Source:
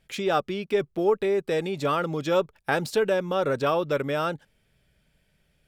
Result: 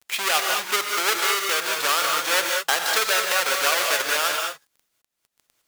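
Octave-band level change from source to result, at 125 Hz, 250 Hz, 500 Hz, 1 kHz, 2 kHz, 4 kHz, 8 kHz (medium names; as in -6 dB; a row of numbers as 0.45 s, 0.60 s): under -20 dB, -12.0 dB, -5.5 dB, +5.0 dB, +11.5 dB, +15.0 dB, +22.0 dB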